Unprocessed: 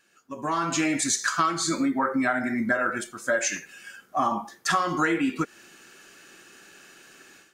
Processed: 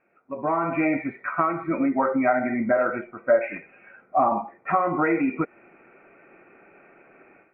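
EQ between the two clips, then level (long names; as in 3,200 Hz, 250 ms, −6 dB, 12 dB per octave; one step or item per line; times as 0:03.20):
Butterworth band-reject 1,700 Hz, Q 4.9
Chebyshev low-pass with heavy ripple 2,500 Hz, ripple 9 dB
high-frequency loss of the air 96 metres
+9.0 dB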